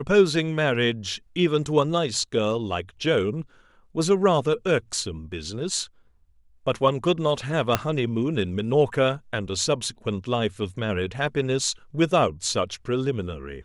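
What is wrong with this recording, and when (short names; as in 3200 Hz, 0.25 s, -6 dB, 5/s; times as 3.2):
7.75 pop -5 dBFS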